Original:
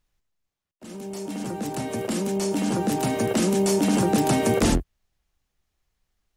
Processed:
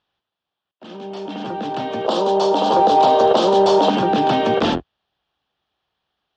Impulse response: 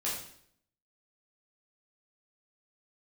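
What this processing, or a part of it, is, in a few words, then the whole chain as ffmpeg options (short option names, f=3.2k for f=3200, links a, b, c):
overdrive pedal into a guitar cabinet: -filter_complex "[0:a]asettb=1/sr,asplit=3[a][b][c];[a]atrim=end=2.064[d];[b]atrim=start=2.06:end=3.9,asetpts=PTS-STARTPTS,afade=t=in:d=0.004:c=qsin,afade=t=out:st=1.836:d=0.004:c=qsin,equalizer=f=125:t=o:w=1:g=-6,equalizer=f=250:t=o:w=1:g=-4,equalizer=f=500:t=o:w=1:g=10,equalizer=f=1k:t=o:w=1:g=11,equalizer=f=2k:t=o:w=1:g=-12,equalizer=f=4k:t=o:w=1:g=8,equalizer=f=8k:t=o:w=1:g=9[e];[c]atrim=start=3.896[f];[d][e]acrossfade=d=0.004:c1=hsin:c2=qsin[g];[g][f]acrossfade=d=0.004:c1=qsin:c2=hsin,asplit=2[h][i];[i]highpass=f=720:p=1,volume=15dB,asoftclip=type=tanh:threshold=-3.5dB[j];[h][j]amix=inputs=2:normalize=0,lowpass=f=2.2k:p=1,volume=-6dB,highpass=83,equalizer=f=780:t=q:w=4:g=3,equalizer=f=2.1k:t=q:w=4:g=-9,equalizer=f=3.3k:t=q:w=4:g=8,lowpass=f=4.6k:w=0.5412,lowpass=f=4.6k:w=1.3066"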